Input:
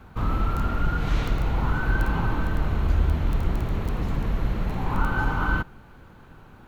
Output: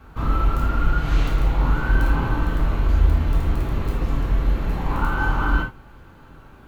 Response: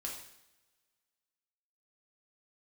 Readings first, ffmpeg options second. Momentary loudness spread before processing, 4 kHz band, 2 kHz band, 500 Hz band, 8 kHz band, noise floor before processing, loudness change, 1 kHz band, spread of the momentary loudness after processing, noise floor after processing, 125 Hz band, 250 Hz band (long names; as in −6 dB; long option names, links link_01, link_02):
4 LU, +2.5 dB, +2.0 dB, +2.5 dB, can't be measured, −49 dBFS, +3.5 dB, +2.5 dB, 5 LU, −46 dBFS, +3.0 dB, +2.0 dB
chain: -filter_complex "[1:a]atrim=start_sample=2205,atrim=end_sample=3969[link_01];[0:a][link_01]afir=irnorm=-1:irlink=0,volume=3.5dB"